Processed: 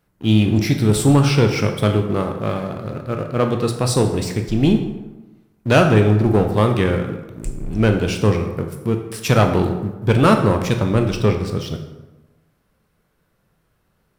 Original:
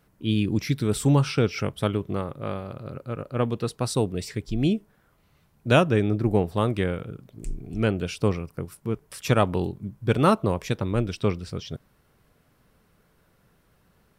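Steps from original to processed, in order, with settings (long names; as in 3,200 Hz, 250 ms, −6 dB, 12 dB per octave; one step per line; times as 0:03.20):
leveller curve on the samples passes 2
convolution reverb RT60 1.1 s, pre-delay 12 ms, DRR 4.5 dB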